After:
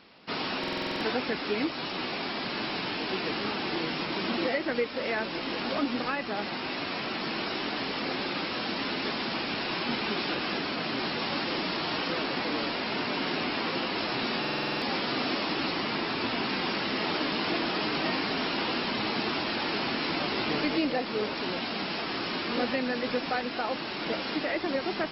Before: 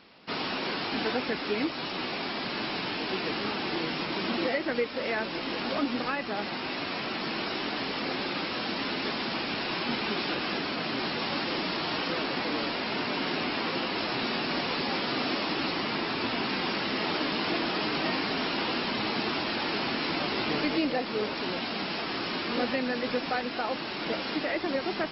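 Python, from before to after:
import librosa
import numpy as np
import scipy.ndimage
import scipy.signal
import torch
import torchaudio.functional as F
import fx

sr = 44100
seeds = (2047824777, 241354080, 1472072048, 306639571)

y = fx.buffer_glitch(x, sr, at_s=(0.59, 14.4), block=2048, repeats=8)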